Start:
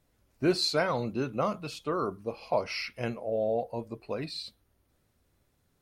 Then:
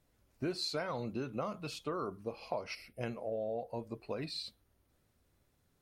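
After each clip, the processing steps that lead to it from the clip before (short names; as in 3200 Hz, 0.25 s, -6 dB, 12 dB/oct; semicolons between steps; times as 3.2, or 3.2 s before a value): spectral gain 2.75–3.01, 780–7300 Hz -16 dB; compressor 4:1, threshold -32 dBFS, peak gain reduction 10.5 dB; gain -2.5 dB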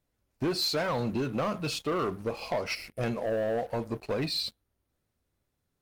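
sample leveller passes 3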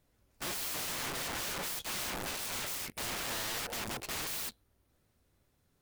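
wrapped overs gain 39 dB; gain +6.5 dB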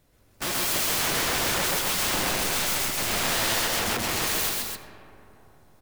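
loudspeakers at several distances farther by 44 m -1 dB, 90 m -4 dB; on a send at -11.5 dB: reverb RT60 3.5 s, pre-delay 35 ms; on the sum: gain +8.5 dB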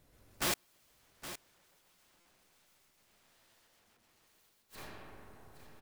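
flipped gate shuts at -23 dBFS, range -41 dB; echo 0.817 s -12.5 dB; stuck buffer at 2.2, samples 256, times 8; gain -3 dB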